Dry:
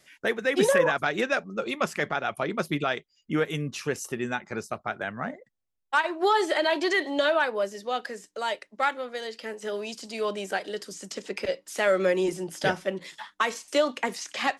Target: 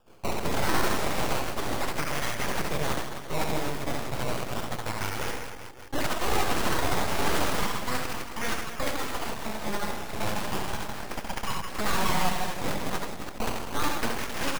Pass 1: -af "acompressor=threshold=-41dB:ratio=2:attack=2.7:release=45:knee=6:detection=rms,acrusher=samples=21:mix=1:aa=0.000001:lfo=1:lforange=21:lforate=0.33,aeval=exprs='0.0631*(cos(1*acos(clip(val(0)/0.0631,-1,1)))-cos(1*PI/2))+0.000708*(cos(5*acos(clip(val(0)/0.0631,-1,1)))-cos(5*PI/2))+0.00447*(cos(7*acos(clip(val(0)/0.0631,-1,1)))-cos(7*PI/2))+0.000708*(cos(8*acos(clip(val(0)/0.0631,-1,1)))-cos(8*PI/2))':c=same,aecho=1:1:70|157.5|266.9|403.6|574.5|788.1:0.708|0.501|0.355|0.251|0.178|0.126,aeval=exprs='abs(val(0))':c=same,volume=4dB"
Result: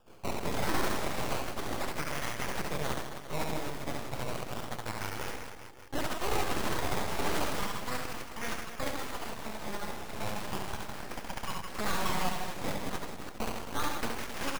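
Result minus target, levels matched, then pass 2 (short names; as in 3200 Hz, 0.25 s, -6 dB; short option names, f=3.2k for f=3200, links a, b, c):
compressor: peak gain reduction +6 dB
-af "acompressor=threshold=-29.5dB:ratio=2:attack=2.7:release=45:knee=6:detection=rms,acrusher=samples=21:mix=1:aa=0.000001:lfo=1:lforange=21:lforate=0.33,aeval=exprs='0.0631*(cos(1*acos(clip(val(0)/0.0631,-1,1)))-cos(1*PI/2))+0.000708*(cos(5*acos(clip(val(0)/0.0631,-1,1)))-cos(5*PI/2))+0.00447*(cos(7*acos(clip(val(0)/0.0631,-1,1)))-cos(7*PI/2))+0.000708*(cos(8*acos(clip(val(0)/0.0631,-1,1)))-cos(8*PI/2))':c=same,aecho=1:1:70|157.5|266.9|403.6|574.5|788.1:0.708|0.501|0.355|0.251|0.178|0.126,aeval=exprs='abs(val(0))':c=same,volume=4dB"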